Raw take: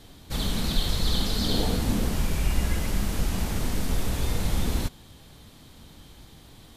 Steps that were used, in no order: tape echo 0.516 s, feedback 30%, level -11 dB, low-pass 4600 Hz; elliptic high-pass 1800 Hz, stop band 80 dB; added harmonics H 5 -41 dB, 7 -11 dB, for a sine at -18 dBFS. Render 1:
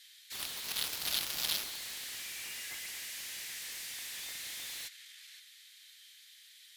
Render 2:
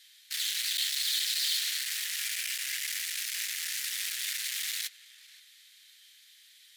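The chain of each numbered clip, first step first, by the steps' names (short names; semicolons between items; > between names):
tape echo > elliptic high-pass > added harmonics; tape echo > added harmonics > elliptic high-pass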